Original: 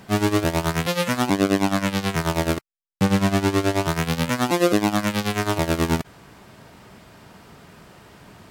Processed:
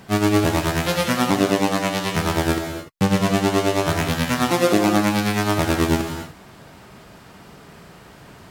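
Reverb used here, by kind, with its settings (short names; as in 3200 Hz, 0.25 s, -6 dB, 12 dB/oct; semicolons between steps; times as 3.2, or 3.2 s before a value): non-linear reverb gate 0.32 s flat, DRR 3.5 dB; gain +1 dB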